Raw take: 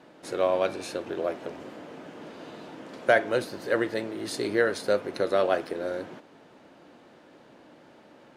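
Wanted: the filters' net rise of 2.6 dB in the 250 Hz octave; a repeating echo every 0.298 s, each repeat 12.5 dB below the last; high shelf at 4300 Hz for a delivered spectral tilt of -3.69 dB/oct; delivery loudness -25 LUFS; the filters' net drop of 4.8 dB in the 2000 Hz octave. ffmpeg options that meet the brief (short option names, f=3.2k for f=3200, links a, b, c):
-af "equalizer=f=250:t=o:g=4,equalizer=f=2k:t=o:g=-7.5,highshelf=f=4.3k:g=4,aecho=1:1:298|596|894:0.237|0.0569|0.0137,volume=2.5dB"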